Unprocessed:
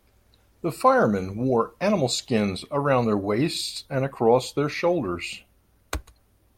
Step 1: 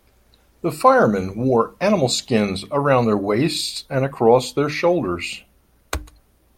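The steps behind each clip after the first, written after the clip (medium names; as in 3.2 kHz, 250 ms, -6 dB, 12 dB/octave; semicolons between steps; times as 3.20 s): hum notches 50/100/150/200/250/300 Hz; trim +5 dB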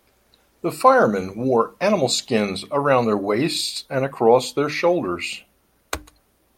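bass shelf 130 Hz -11.5 dB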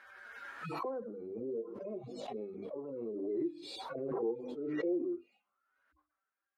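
harmonic-percussive separation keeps harmonic; auto-wah 360–1600 Hz, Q 6.5, down, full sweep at -24 dBFS; swell ahead of each attack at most 26 dB/s; trim -9 dB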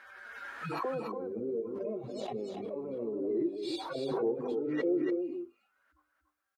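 delay 287 ms -6 dB; trim +3.5 dB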